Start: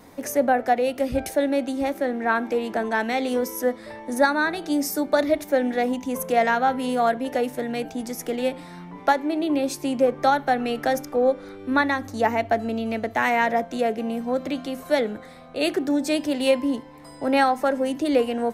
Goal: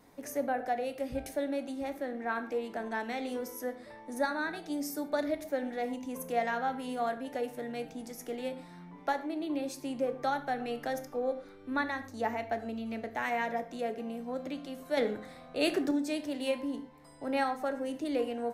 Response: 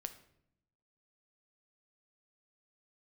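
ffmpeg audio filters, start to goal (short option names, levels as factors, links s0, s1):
-filter_complex "[0:a]asettb=1/sr,asplit=3[s0][s1][s2];[s0]atrim=end=14.974[s3];[s1]atrim=start=14.97:end=15.91,asetpts=PTS-STARTPTS,afade=t=in:d=0.004:c=qsin,afade=t=out:st=0.936:d=0.004:c=qsin,acontrast=70[s4];[s2]atrim=start=15.906[s5];[s3][s4]acrossfade=d=0.004:c1=hsin:c2=qsin[s6];[s6][s5]acrossfade=d=0.004:c1=qsin:c2=hsin[s7];[1:a]atrim=start_sample=2205,atrim=end_sample=6615[s8];[s7][s8]afir=irnorm=-1:irlink=0,volume=0.376"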